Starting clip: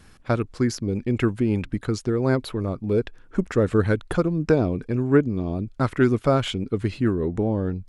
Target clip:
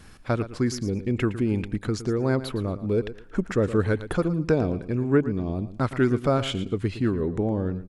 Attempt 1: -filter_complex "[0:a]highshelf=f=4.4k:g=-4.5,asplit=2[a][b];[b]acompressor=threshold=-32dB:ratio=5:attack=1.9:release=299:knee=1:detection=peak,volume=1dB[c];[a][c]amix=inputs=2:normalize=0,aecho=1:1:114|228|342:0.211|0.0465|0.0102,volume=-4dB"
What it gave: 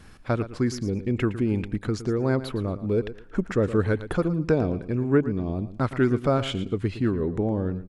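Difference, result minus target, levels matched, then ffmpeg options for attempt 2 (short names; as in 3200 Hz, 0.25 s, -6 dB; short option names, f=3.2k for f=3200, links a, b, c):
8000 Hz band -3.0 dB
-filter_complex "[0:a]asplit=2[a][b];[b]acompressor=threshold=-32dB:ratio=5:attack=1.9:release=299:knee=1:detection=peak,volume=1dB[c];[a][c]amix=inputs=2:normalize=0,aecho=1:1:114|228|342:0.211|0.0465|0.0102,volume=-4dB"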